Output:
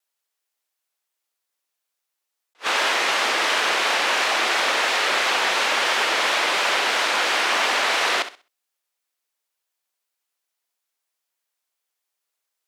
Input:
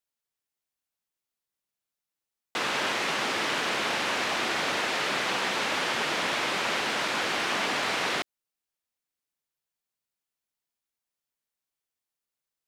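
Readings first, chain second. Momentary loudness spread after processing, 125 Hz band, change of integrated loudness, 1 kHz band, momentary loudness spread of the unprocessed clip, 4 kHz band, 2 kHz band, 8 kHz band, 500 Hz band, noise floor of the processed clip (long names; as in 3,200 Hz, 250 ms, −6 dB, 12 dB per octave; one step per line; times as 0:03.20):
1 LU, below −10 dB, +7.5 dB, +7.5 dB, 1 LU, +7.5 dB, +7.5 dB, +7.5 dB, +5.5 dB, −82 dBFS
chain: high-pass filter 470 Hz 12 dB per octave
on a send: flutter between parallel walls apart 11.2 metres, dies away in 0.32 s
on the sum: pitch vibrato 2.9 Hz 47 cents
level that may rise only so fast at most 450 dB per second
level +7.5 dB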